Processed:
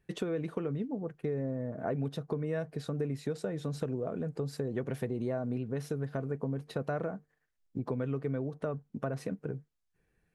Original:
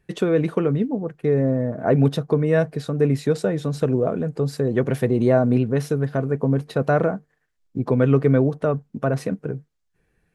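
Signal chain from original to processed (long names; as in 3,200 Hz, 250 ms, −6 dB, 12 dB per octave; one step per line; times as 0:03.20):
downward compressor 4 to 1, threshold −24 dBFS, peak gain reduction 11 dB
level −7.5 dB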